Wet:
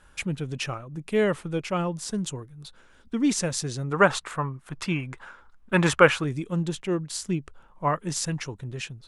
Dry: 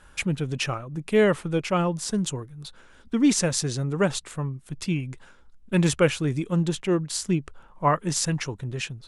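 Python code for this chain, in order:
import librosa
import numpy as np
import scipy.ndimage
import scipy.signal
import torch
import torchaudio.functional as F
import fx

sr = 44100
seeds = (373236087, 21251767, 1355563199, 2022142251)

y = fx.peak_eq(x, sr, hz=1200.0, db=15.0, octaves=2.2, at=(3.91, 6.24))
y = y * 10.0 ** (-3.5 / 20.0)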